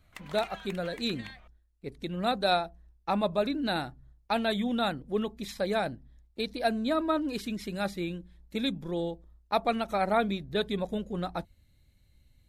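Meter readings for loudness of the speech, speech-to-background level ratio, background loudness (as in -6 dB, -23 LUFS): -31.0 LUFS, 15.5 dB, -46.5 LUFS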